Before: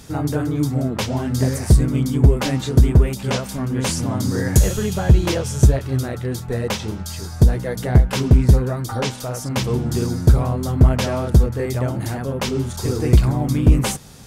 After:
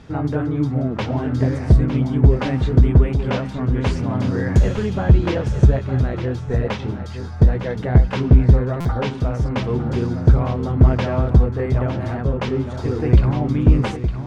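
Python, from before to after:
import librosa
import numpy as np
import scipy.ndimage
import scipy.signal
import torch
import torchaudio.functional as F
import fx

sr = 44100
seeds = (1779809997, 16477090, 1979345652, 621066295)

y = scipy.signal.sosfilt(scipy.signal.butter(2, 2600.0, 'lowpass', fs=sr, output='sos'), x)
y = y + 10.0 ** (-9.5 / 20.0) * np.pad(y, (int(908 * sr / 1000.0), 0))[:len(y)]
y = fx.buffer_glitch(y, sr, at_s=(8.8,), block=256, repeats=8)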